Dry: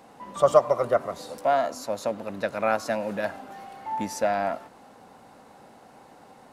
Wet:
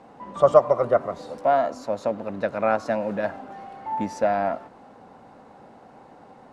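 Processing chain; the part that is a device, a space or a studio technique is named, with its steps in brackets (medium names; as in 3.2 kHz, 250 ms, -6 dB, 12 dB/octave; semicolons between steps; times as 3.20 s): through cloth (low-pass 8.3 kHz 12 dB/octave; treble shelf 2.4 kHz -11.5 dB); trim +3.5 dB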